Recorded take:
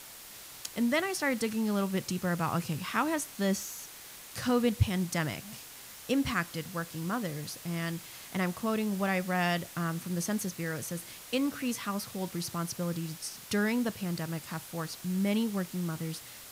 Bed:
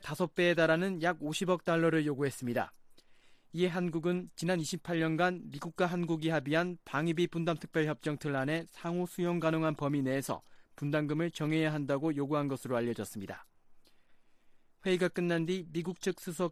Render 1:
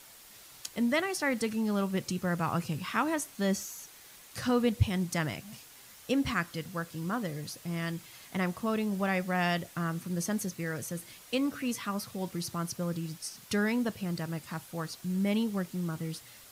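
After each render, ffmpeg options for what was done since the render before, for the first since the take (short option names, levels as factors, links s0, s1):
-af "afftdn=nr=6:nf=-48"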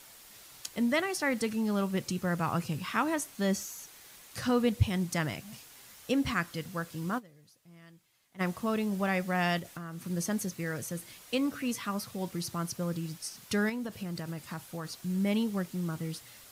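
-filter_complex "[0:a]asettb=1/sr,asplit=3[s0][s1][s2];[s0]atrim=end=9.594[s3];[s1]atrim=start=9.59:end=10.06,asetpts=PTS-STARTPTS,afade=t=in:d=0.004:c=qsin,afade=t=out:st=0.466:d=0.004:c=qsin,acompressor=threshold=0.0141:ratio=5:attack=3.2:release=140:knee=1:detection=peak[s4];[s2]atrim=start=10.056[s5];[s3][s4]acrossfade=d=0.004:c1=hsin:c2=qsin[s6];[s6][s5]acrossfade=d=0.004:c1=qsin:c2=hsin,asettb=1/sr,asplit=3[s7][s8][s9];[s7]atrim=end=13.694[s10];[s8]atrim=start=13.69:end=14.92,asetpts=PTS-STARTPTS,afade=t=in:d=0.004:c=qsin,afade=t=out:st=1.226:d=0.004:c=qsin,acompressor=threshold=0.0251:ratio=6:attack=3.2:release=140:knee=1:detection=peak[s11];[s9]atrim=start=14.916[s12];[s10][s11]acrossfade=d=0.004:c1=hsin:c2=qsin[s13];[s13][s12]acrossfade=d=0.004:c1=qsin:c2=hsin,asplit=3[s14][s15][s16];[s14]atrim=end=7.3,asetpts=PTS-STARTPTS,afade=t=out:st=7.18:d=0.12:c=exp:silence=0.0944061[s17];[s15]atrim=start=7.3:end=8.29,asetpts=PTS-STARTPTS,volume=0.0944[s18];[s16]atrim=start=8.29,asetpts=PTS-STARTPTS,afade=t=in:d=0.12:c=exp:silence=0.0944061[s19];[s17][s18][s19]concat=n=3:v=0:a=1"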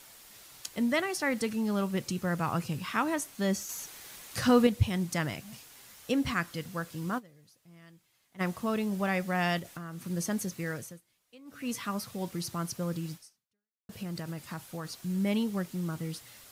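-filter_complex "[0:a]asettb=1/sr,asplit=3[s0][s1][s2];[s0]atrim=end=3.694[s3];[s1]atrim=start=3.69:end=4.67,asetpts=PTS-STARTPTS,afade=t=in:d=0.004:c=qsin,afade=t=out:st=0.976:d=0.004:c=qsin,acontrast=27[s4];[s2]atrim=start=4.666[s5];[s3][s4]acrossfade=d=0.004:c1=hsin:c2=qsin[s6];[s6][s5]acrossfade=d=0.004:c1=qsin:c2=hsin,asplit=4[s7][s8][s9][s10];[s7]atrim=end=11.01,asetpts=PTS-STARTPTS,afade=t=out:st=10.71:d=0.3:silence=0.0668344[s11];[s8]atrim=start=11.01:end=11.45,asetpts=PTS-STARTPTS,volume=0.0668[s12];[s9]atrim=start=11.45:end=13.89,asetpts=PTS-STARTPTS,afade=t=in:d=0.3:silence=0.0668344,afade=t=out:st=1.69:d=0.75:c=exp[s13];[s10]atrim=start=13.89,asetpts=PTS-STARTPTS,afade=t=in:d=0.004:c=hsin[s14];[s11][s12][s13][s14]concat=n=4:v=0:a=1"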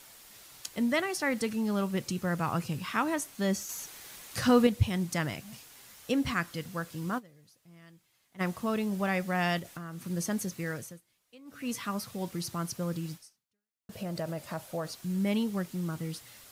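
-filter_complex "[0:a]asettb=1/sr,asplit=3[s0][s1][s2];[s0]atrim=end=13.954[s3];[s1]atrim=start=13.95:end=14.92,asetpts=PTS-STARTPTS,afade=t=in:d=0.004:c=qsin,afade=t=out:st=0.966:d=0.004:c=qsin,equalizer=f=610:t=o:w=0.6:g=14[s4];[s2]atrim=start=14.916[s5];[s3][s4]acrossfade=d=0.004:c1=hsin:c2=qsin[s6];[s6][s5]acrossfade=d=0.004:c1=qsin:c2=hsin"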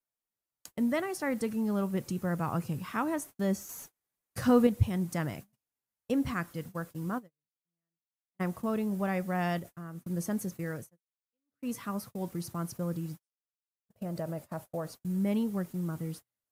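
-af "agate=range=0.0126:threshold=0.00891:ratio=16:detection=peak,equalizer=f=3800:w=0.5:g=-10"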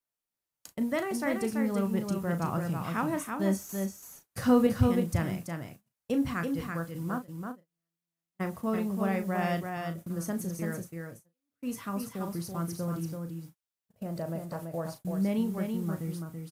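-filter_complex "[0:a]asplit=2[s0][s1];[s1]adelay=36,volume=0.335[s2];[s0][s2]amix=inputs=2:normalize=0,aecho=1:1:333:0.562"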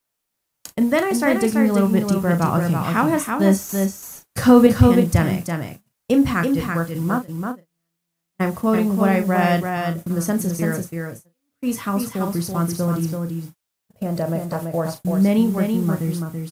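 -af "volume=3.98,alimiter=limit=0.891:level=0:latency=1"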